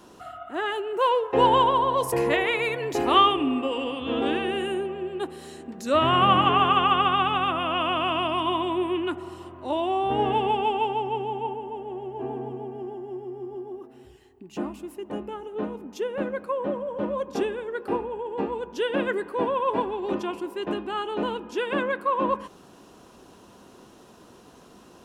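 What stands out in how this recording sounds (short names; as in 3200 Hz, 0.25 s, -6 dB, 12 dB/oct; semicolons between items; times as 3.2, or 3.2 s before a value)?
noise floor -51 dBFS; spectral tilt -2.5 dB/oct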